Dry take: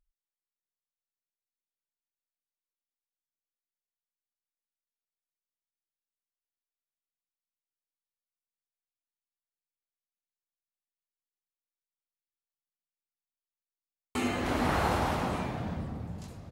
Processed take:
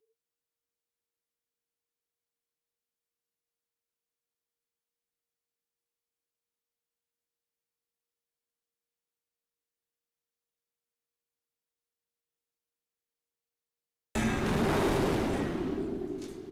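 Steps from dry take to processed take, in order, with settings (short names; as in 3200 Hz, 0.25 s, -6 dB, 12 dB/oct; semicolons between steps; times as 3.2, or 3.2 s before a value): frequency shift -470 Hz; tube stage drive 26 dB, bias 0.45; gain +4.5 dB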